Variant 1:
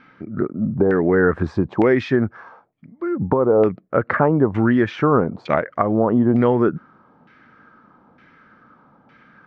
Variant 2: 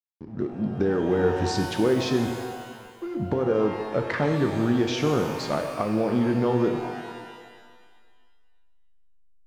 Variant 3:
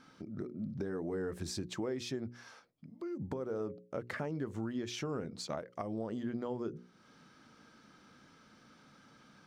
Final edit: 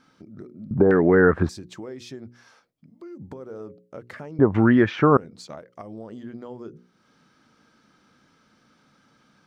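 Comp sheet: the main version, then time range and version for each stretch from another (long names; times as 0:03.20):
3
0:00.71–0:01.49: punch in from 1
0:04.39–0:05.17: punch in from 1
not used: 2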